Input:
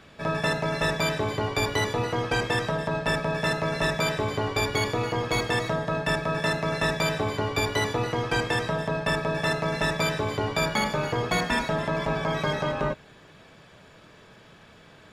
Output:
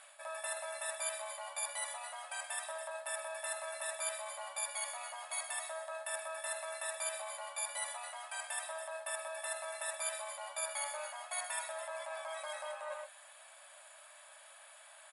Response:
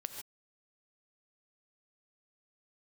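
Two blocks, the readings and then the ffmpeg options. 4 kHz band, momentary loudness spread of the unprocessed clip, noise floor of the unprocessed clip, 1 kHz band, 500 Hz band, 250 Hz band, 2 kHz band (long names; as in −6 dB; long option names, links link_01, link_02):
−15.5 dB, 3 LU, −52 dBFS, −14.5 dB, −16.5 dB, below −40 dB, −15.0 dB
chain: -af "aecho=1:1:126:0.266,areverse,acompressor=threshold=-32dB:ratio=12,areverse,aexciter=amount=11.4:drive=9.3:freq=8600,afftfilt=real='re*between(b*sr/4096,540,11000)':imag='im*between(b*sr/4096,540,11000)':win_size=4096:overlap=0.75,volume=-5dB"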